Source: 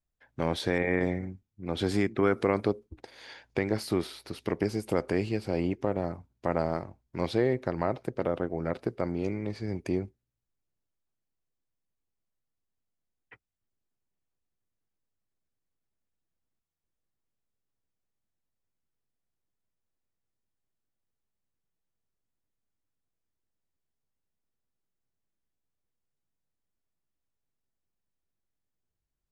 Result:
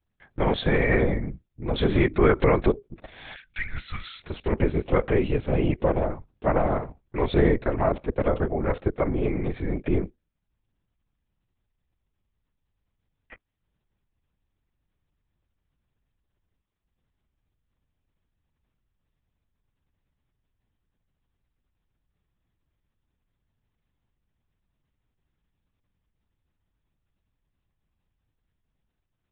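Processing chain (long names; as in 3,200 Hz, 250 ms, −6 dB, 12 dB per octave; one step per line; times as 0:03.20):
0:03.35–0:04.23: Chebyshev band-stop filter 120–1,300 Hz, order 4
linear-prediction vocoder at 8 kHz whisper
level +6.5 dB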